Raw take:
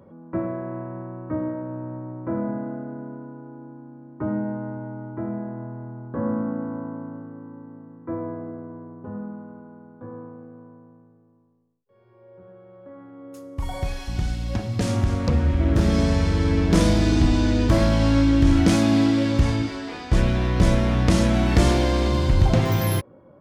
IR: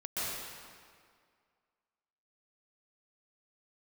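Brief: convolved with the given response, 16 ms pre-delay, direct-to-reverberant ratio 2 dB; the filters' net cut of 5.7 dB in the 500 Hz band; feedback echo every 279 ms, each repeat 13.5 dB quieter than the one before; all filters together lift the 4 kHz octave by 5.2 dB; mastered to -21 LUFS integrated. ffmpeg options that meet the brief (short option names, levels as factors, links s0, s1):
-filter_complex "[0:a]equalizer=f=500:t=o:g=-8,equalizer=f=4000:t=o:g=6.5,aecho=1:1:279|558:0.211|0.0444,asplit=2[s0][s1];[1:a]atrim=start_sample=2205,adelay=16[s2];[s1][s2]afir=irnorm=-1:irlink=0,volume=0.422[s3];[s0][s3]amix=inputs=2:normalize=0"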